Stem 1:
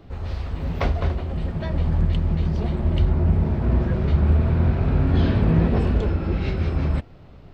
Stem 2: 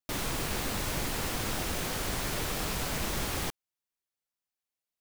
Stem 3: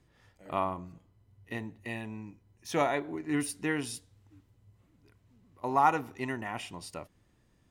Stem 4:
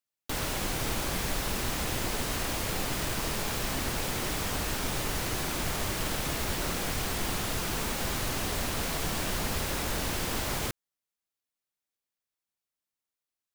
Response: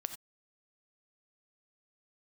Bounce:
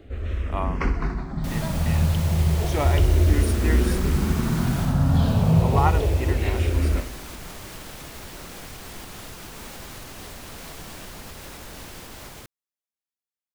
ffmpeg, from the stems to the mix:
-filter_complex "[0:a]asplit=2[s0][s1];[s1]afreqshift=-0.3[s2];[s0][s2]amix=inputs=2:normalize=1,volume=1.26,asplit=2[s3][s4];[s4]volume=0.266[s5];[1:a]adelay=1350,volume=0.596,asplit=2[s6][s7];[s7]volume=0.631[s8];[2:a]volume=1.12[s9];[3:a]alimiter=limit=0.0631:level=0:latency=1:release=275,dynaudnorm=f=300:g=21:m=2.51,adelay=1750,volume=0.251[s10];[s5][s8]amix=inputs=2:normalize=0,aecho=0:1:63|126|189|252|315|378|441|504|567:1|0.58|0.336|0.195|0.113|0.0656|0.0381|0.0221|0.0128[s11];[s3][s6][s9][s10][s11]amix=inputs=5:normalize=0"

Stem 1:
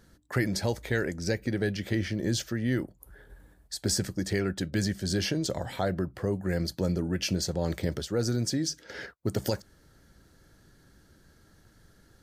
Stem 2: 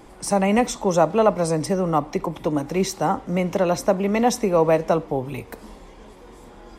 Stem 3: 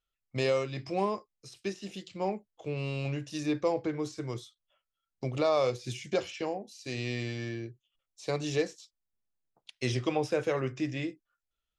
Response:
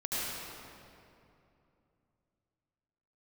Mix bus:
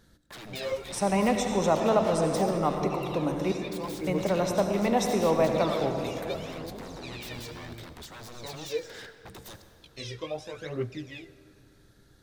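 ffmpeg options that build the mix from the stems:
-filter_complex "[0:a]acompressor=threshold=0.0282:ratio=6,aeval=exprs='0.0133*(abs(mod(val(0)/0.0133+3,4)-2)-1)':c=same,volume=0.708,asplit=2[s0][s1];[s1]volume=0.168[s2];[1:a]adelay=700,volume=0.355,asplit=3[s3][s4][s5];[s3]atrim=end=3.52,asetpts=PTS-STARTPTS,afade=t=out:st=3.516:d=0.004:c=hsin[s6];[s4]atrim=start=3.52:end=4.07,asetpts=PTS-STARTPTS,volume=0[s7];[s5]atrim=start=4.07,asetpts=PTS-STARTPTS,afade=t=in:d=0.004:c=hsin[s8];[s6][s7][s8]concat=n=3:v=0:a=1,asplit=2[s9][s10];[s10]volume=0.422[s11];[2:a]flanger=delay=17.5:depth=2.5:speed=2.9,aphaser=in_gain=1:out_gain=1:delay=2.2:decay=0.74:speed=0.75:type=triangular,adelay=150,volume=0.501,asplit=2[s12][s13];[s13]volume=0.0668[s14];[3:a]atrim=start_sample=2205[s15];[s2][s11][s14]amix=inputs=3:normalize=0[s16];[s16][s15]afir=irnorm=-1:irlink=0[s17];[s0][s9][s12][s17]amix=inputs=4:normalize=0,equalizer=f=3700:w=6.7:g=8"

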